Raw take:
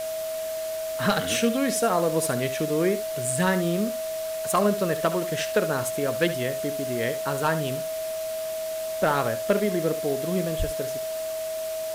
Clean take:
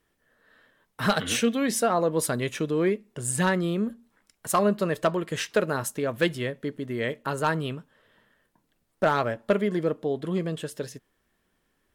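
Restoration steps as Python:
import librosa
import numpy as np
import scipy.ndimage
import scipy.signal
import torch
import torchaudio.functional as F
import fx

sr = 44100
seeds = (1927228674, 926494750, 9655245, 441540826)

y = fx.notch(x, sr, hz=640.0, q=30.0)
y = fx.highpass(y, sr, hz=140.0, slope=24, at=(10.58, 10.7), fade=0.02)
y = fx.noise_reduce(y, sr, print_start_s=0.0, print_end_s=0.5, reduce_db=30.0)
y = fx.fix_echo_inverse(y, sr, delay_ms=70, level_db=-13.0)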